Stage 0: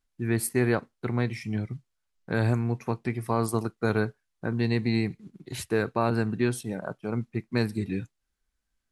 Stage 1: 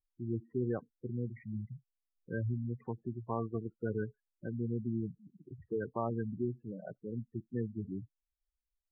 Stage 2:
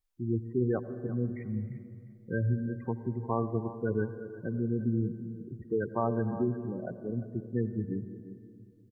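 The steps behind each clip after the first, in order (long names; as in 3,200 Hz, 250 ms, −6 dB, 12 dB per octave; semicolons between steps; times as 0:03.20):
Chebyshev low-pass filter 1,900 Hz, order 4; gate on every frequency bin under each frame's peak −10 dB strong; level −8.5 dB
repeating echo 350 ms, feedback 18%, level −14 dB; convolution reverb RT60 2.3 s, pre-delay 78 ms, DRR 11 dB; level +5.5 dB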